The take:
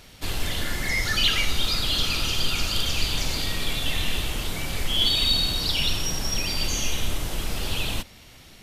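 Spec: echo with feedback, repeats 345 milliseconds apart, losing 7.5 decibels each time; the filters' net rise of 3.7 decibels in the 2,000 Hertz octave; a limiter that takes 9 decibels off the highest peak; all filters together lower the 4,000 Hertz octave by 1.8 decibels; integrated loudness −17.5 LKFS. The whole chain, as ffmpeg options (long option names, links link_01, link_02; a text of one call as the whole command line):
ffmpeg -i in.wav -af "equalizer=frequency=2000:width_type=o:gain=6,equalizer=frequency=4000:width_type=o:gain=-4.5,alimiter=limit=-17dB:level=0:latency=1,aecho=1:1:345|690|1035|1380|1725:0.422|0.177|0.0744|0.0312|0.0131,volume=9dB" out.wav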